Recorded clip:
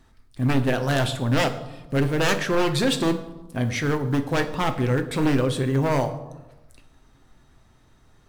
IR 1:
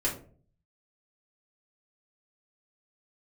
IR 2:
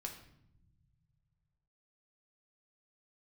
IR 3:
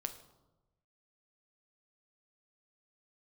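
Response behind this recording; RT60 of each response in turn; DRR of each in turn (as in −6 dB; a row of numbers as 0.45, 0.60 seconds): 3; 0.45, 0.80, 1.1 seconds; −6.5, 1.5, 6.5 decibels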